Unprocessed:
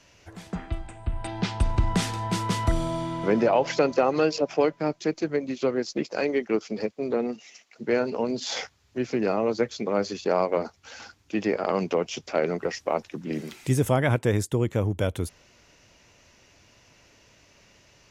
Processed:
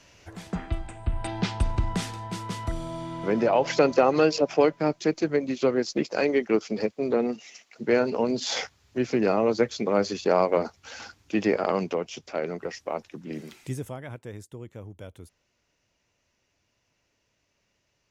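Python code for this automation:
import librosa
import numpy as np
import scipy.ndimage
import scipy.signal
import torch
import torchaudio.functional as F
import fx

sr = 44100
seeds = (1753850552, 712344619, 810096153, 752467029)

y = fx.gain(x, sr, db=fx.line((1.3, 1.5), (2.29, -7.0), (2.81, -7.0), (3.83, 2.0), (11.59, 2.0), (12.08, -5.0), (13.57, -5.0), (13.99, -16.5)))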